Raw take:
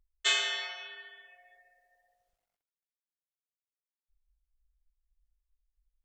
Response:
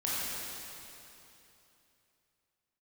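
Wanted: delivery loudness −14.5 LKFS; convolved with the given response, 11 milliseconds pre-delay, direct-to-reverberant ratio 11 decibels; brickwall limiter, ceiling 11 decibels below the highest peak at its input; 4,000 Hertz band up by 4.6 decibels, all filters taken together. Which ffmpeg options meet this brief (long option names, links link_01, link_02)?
-filter_complex "[0:a]equalizer=frequency=4000:width_type=o:gain=6,alimiter=limit=-22dB:level=0:latency=1,asplit=2[link_01][link_02];[1:a]atrim=start_sample=2205,adelay=11[link_03];[link_02][link_03]afir=irnorm=-1:irlink=0,volume=-18.5dB[link_04];[link_01][link_04]amix=inputs=2:normalize=0,volume=18dB"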